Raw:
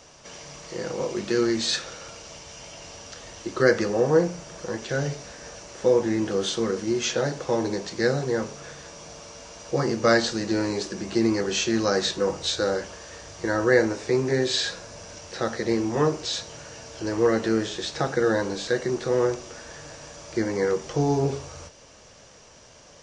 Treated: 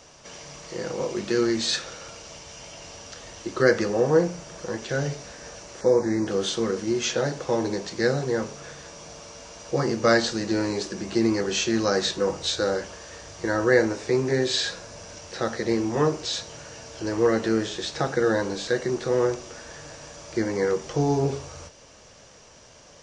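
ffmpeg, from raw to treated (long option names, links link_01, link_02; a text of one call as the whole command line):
ffmpeg -i in.wav -filter_complex "[0:a]asettb=1/sr,asplit=3[link_01][link_02][link_03];[link_01]atrim=end=5.814[link_04];[link_02]atrim=start=5.81:end=6.27,asetpts=PTS-STARTPTS,afade=type=in:duration=0.004:curve=qsin,afade=type=out:start_time=0.456:duration=0.004:curve=qsin,asuperstop=centerf=3000:order=4:qfactor=1.7[link_05];[link_03]atrim=start=6.266[link_06];[link_04][link_05]acrossfade=duration=0.004:curve1=hsin:curve2=qsin[link_07];[link_07][link_06]acrossfade=duration=0.004:curve1=qsin:curve2=hsin" out.wav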